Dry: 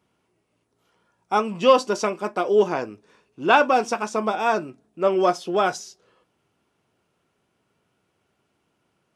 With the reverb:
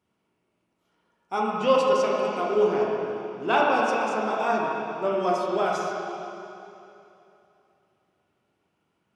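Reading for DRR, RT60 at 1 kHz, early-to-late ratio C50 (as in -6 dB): -3.5 dB, 2.8 s, -1.5 dB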